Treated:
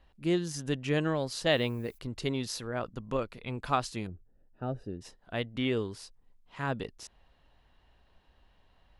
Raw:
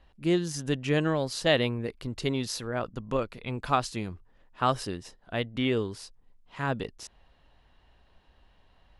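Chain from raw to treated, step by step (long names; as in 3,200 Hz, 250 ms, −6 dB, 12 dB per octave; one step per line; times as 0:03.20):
0:01.50–0:01.97: background noise violet −60 dBFS
0:04.07–0:05.01: moving average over 41 samples
level −3 dB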